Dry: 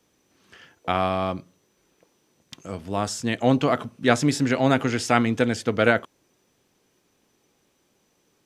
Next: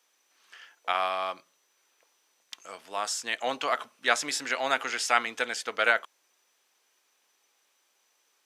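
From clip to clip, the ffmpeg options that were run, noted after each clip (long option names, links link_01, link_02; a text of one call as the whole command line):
ffmpeg -i in.wav -af "highpass=930" out.wav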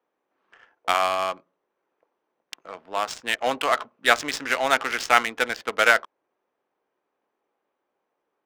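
ffmpeg -i in.wav -af "adynamicsmooth=sensitivity=5.5:basefreq=780,volume=6dB" out.wav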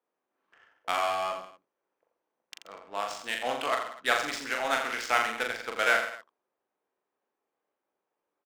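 ffmpeg -i in.wav -af "aecho=1:1:40|84|132.4|185.6|244.2:0.631|0.398|0.251|0.158|0.1,volume=-8.5dB" out.wav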